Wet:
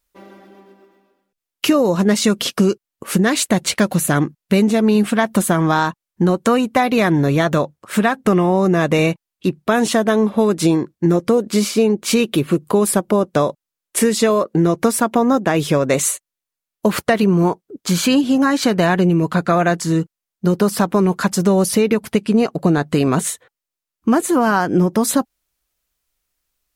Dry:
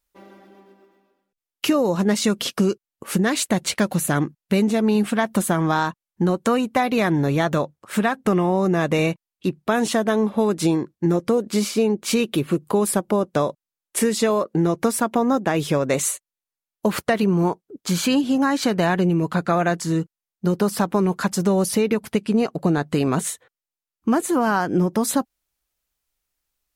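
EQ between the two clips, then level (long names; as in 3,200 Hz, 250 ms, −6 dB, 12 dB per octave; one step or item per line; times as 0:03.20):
notch filter 840 Hz, Q 18
+4.5 dB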